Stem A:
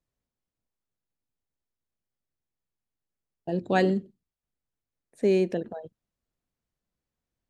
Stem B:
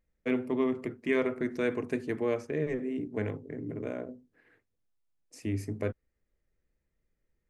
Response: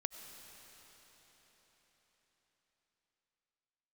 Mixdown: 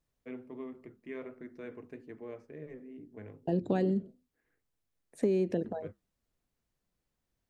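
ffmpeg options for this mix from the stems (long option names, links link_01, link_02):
-filter_complex "[0:a]acrossover=split=500[link_01][link_02];[link_02]acompressor=threshold=-45dB:ratio=2[link_03];[link_01][link_03]amix=inputs=2:normalize=0,volume=2.5dB,asplit=2[link_04][link_05];[1:a]flanger=delay=3.9:depth=4.4:regen=-80:speed=1.4:shape=sinusoidal,lowpass=frequency=2400:poles=1,volume=-10dB[link_06];[link_05]apad=whole_len=330608[link_07];[link_06][link_07]sidechaincompress=threshold=-33dB:ratio=8:attack=16:release=305[link_08];[link_04][link_08]amix=inputs=2:normalize=0,acompressor=threshold=-25dB:ratio=6"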